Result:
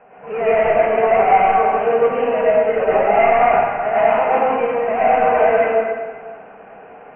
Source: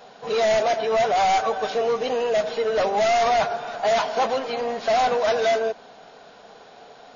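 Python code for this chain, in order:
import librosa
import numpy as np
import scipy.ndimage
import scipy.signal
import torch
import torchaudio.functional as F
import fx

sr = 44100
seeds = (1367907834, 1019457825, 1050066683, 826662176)

y = scipy.signal.sosfilt(scipy.signal.butter(16, 2700.0, 'lowpass', fs=sr, output='sos'), x)
y = fx.rev_plate(y, sr, seeds[0], rt60_s=1.5, hf_ratio=0.85, predelay_ms=85, drr_db=-8.0)
y = y * 10.0 ** (-2.0 / 20.0)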